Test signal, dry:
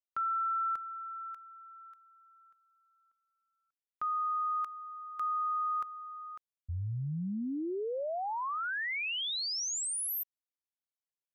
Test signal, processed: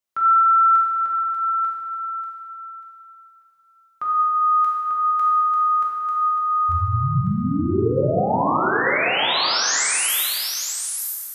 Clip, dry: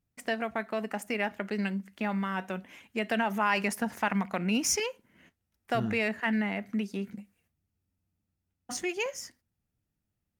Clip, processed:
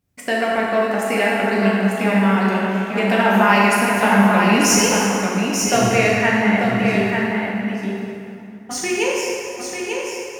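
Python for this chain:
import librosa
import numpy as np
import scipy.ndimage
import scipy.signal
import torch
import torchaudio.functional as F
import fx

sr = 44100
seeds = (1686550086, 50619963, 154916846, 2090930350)

y = scipy.signal.sosfilt(scipy.signal.butter(2, 50.0, 'highpass', fs=sr, output='sos'), x)
y = y + 10.0 ** (-5.0 / 20.0) * np.pad(y, (int(893 * sr / 1000.0), 0))[:len(y)]
y = fx.rev_plate(y, sr, seeds[0], rt60_s=2.9, hf_ratio=0.65, predelay_ms=0, drr_db=-5.0)
y = y * librosa.db_to_amplitude(7.5)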